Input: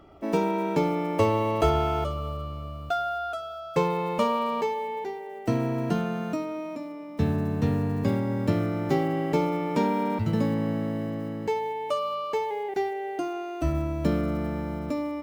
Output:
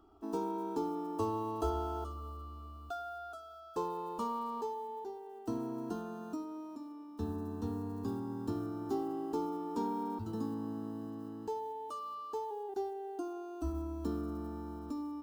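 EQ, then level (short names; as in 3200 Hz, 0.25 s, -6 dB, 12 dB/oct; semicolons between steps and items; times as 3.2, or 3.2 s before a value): dynamic EQ 2400 Hz, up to -6 dB, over -46 dBFS, Q 0.92; fixed phaser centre 570 Hz, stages 6; -8.0 dB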